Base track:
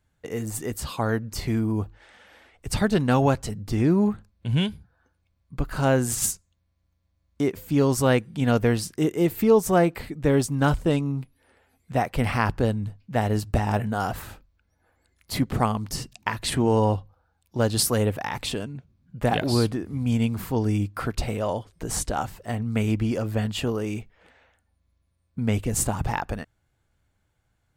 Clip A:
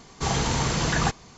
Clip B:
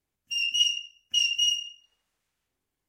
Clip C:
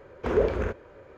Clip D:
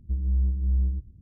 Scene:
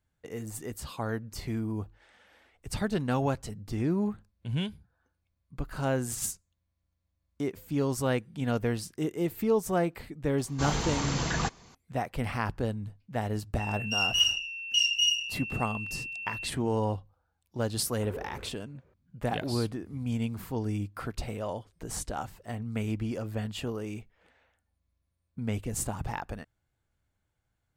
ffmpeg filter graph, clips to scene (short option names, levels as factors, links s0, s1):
-filter_complex "[0:a]volume=0.398[s0];[2:a]aeval=exprs='val(0)+0.0178*sin(2*PI*2700*n/s)':c=same[s1];[1:a]atrim=end=1.37,asetpts=PTS-STARTPTS,volume=0.501,afade=t=in:d=0.004:c=hsin,afade=t=out:st=1.366:d=0.004:c=hsin,adelay=10380[s2];[s1]atrim=end=2.88,asetpts=PTS-STARTPTS,volume=0.891,afade=t=in:d=0.004:c=hsin,afade=t=out:st=2.876:d=0.004:c=hsin,adelay=13600[s3];[3:a]atrim=end=1.17,asetpts=PTS-STARTPTS,volume=0.133,afade=t=in:d=0.004:c=hsin,afade=t=out:st=1.166:d=0.004:c=hsin,adelay=17770[s4];[s0][s2][s3][s4]amix=inputs=4:normalize=0"